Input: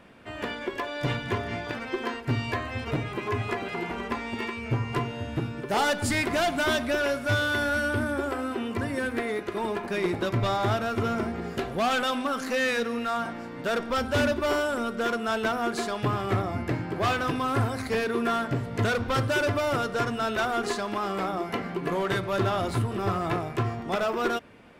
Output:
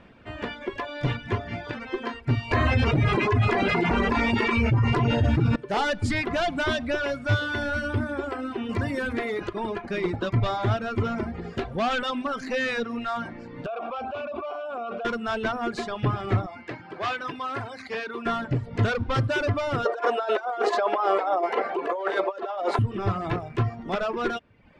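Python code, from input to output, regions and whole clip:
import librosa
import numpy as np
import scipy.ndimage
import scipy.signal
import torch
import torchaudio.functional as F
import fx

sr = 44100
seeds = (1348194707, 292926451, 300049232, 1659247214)

y = fx.chain(x, sr, fx.filter_lfo_notch(shape='sine', hz=9.5, low_hz=460.0, high_hz=3400.0, q=2.8),
    fx.env_flatten(amount_pct=100), at=(2.51, 5.56))
y = fx.chain(y, sr, fx.high_shelf(hz=6900.0, db=10.0),
    fx.resample_bad(factor=2, down='filtered', up='hold'),
    fx.env_flatten(amount_pct=50), at=(8.69, 9.49))
y = fx.chain(y, sr, fx.vowel_filter(vowel='a'),
    fx.high_shelf(hz=11000.0, db=-5.0),
    fx.env_flatten(amount_pct=100), at=(13.66, 15.05))
y = fx.chain(y, sr, fx.highpass(hz=750.0, slope=6),
    fx.high_shelf(hz=11000.0, db=-11.5), at=(16.46, 18.26))
y = fx.chain(y, sr, fx.peak_eq(hz=650.0, db=12.0, octaves=2.1),
    fx.over_compress(threshold_db=-22.0, ratio=-0.5),
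    fx.highpass(hz=380.0, slope=24), at=(19.85, 22.79))
y = fx.dereverb_blind(y, sr, rt60_s=0.77)
y = scipy.signal.sosfilt(scipy.signal.butter(2, 5100.0, 'lowpass', fs=sr, output='sos'), y)
y = fx.low_shelf(y, sr, hz=120.0, db=9.0)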